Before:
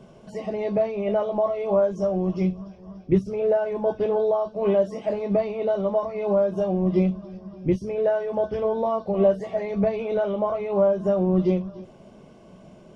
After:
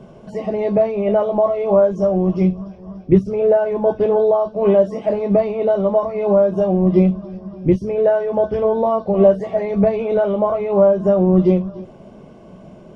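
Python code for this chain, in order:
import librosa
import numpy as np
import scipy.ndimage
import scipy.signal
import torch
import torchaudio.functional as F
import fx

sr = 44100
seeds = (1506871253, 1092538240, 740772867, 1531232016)

y = fx.high_shelf(x, sr, hz=2300.0, db=-8.0)
y = F.gain(torch.from_numpy(y), 7.5).numpy()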